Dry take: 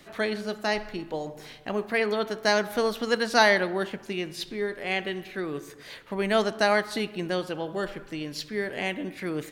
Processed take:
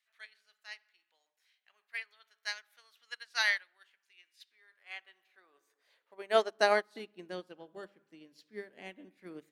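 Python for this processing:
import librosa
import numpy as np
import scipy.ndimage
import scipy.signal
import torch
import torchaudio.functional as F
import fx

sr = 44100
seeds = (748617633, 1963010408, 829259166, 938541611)

y = fx.hum_notches(x, sr, base_hz=50, count=4)
y = fx.filter_sweep_highpass(y, sr, from_hz=1900.0, to_hz=210.0, start_s=4.26, end_s=7.42, q=1.2)
y = fx.upward_expand(y, sr, threshold_db=-35.0, expansion=2.5)
y = F.gain(torch.from_numpy(y), -2.5).numpy()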